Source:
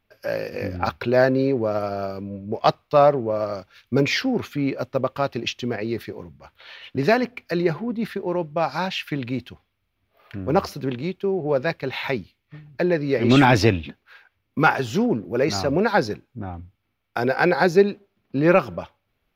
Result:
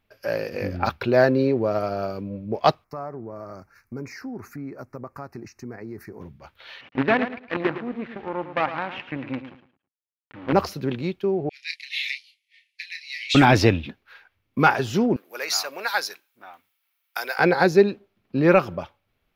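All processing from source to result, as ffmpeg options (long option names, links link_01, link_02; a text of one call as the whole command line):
ffmpeg -i in.wav -filter_complex "[0:a]asettb=1/sr,asplit=3[link_01][link_02][link_03];[link_01]atrim=end=2.844[link_04];[link_02]atrim=start=2.84:end=6.21,asetpts=PTS-STARTPTS,afade=type=in:duration=0.004:curve=qsin,afade=type=out:start_time=3.366:duration=0.004:curve=qsin,equalizer=frequency=550:width_type=o:width=0.49:gain=-7.5,acompressor=threshold=-36dB:ratio=2.5:attack=3.2:release=140:knee=1:detection=peak,asuperstop=centerf=3300:order=4:qfactor=0.86[link_05];[link_03]atrim=start=6.206[link_06];[link_04][link_05]acrossfade=duration=0.004:curve1=hsin:curve2=qsin[link_07];[link_07][link_06]acrossfade=duration=0.004:curve1=qsin:curve2=hsin,asettb=1/sr,asplit=3[link_08][link_09][link_10];[link_08]atrim=end=6.814[link_11];[link_09]atrim=start=6.81:end=10.53,asetpts=PTS-STARTPTS,afade=type=in:duration=0.004:curve=qsin,afade=type=out:start_time=3.716:duration=0.004:curve=qsin,acrusher=bits=4:dc=4:mix=0:aa=0.000001,highpass=120,equalizer=frequency=180:width_type=q:width=4:gain=-8,equalizer=frequency=270:width_type=q:width=4:gain=4,equalizer=frequency=400:width_type=q:width=4:gain=-6,equalizer=frequency=650:width_type=q:width=4:gain=-4,lowpass=frequency=2700:width=0.5412,lowpass=frequency=2700:width=1.3066,aecho=1:1:109|218|327:0.282|0.0676|0.0162,atrim=end_sample=164052[link_12];[link_10]atrim=start=10.526[link_13];[link_11][link_12]acrossfade=duration=0.004:curve1=hsin:curve2=qsin[link_14];[link_14][link_13]acrossfade=duration=0.004:curve1=qsin:curve2=hsin,asettb=1/sr,asplit=3[link_15][link_16][link_17];[link_15]atrim=end=11.494[link_18];[link_16]atrim=start=11.49:end=13.35,asetpts=PTS-STARTPTS,afade=type=in:duration=0.004:curve=qsin,afade=type=out:start_time=1.856:duration=0.004:curve=qsin,asuperpass=centerf=5200:order=20:qfactor=0.54,asplit=2[link_19][link_20];[link_20]adelay=29,volume=-8dB[link_21];[link_19][link_21]amix=inputs=2:normalize=0,atrim=end_sample=82026,adynamicequalizer=threshold=0.00794:dfrequency=2900:dqfactor=0.7:tfrequency=2900:tqfactor=0.7:attack=5:release=100:ratio=0.375:range=3:mode=boostabove:tftype=highshelf[link_22];[link_17]atrim=start=13.346[link_23];[link_18][link_22]acrossfade=duration=0.004:curve1=hsin:curve2=qsin[link_24];[link_24][link_23]acrossfade=duration=0.004:curve1=qsin:curve2=hsin,asettb=1/sr,asplit=3[link_25][link_26][link_27];[link_25]atrim=end=15.164[link_28];[link_26]atrim=start=15.16:end=17.39,asetpts=PTS-STARTPTS,afade=type=in:duration=0.004:curve=qsin,afade=type=out:start_time=2.226:duration=0.004:curve=qsin,highpass=1100,aemphasis=mode=production:type=50fm[link_29];[link_27]atrim=start=17.386[link_30];[link_28][link_29]acrossfade=duration=0.004:curve1=hsin:curve2=qsin[link_31];[link_31][link_30]acrossfade=duration=0.004:curve1=qsin:curve2=hsin" out.wav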